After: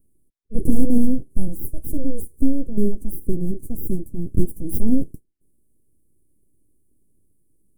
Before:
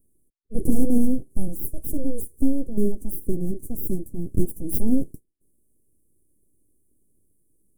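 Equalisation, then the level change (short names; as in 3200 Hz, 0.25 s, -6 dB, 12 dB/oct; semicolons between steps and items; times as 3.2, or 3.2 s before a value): low shelf 380 Hz +6.5 dB; -2.5 dB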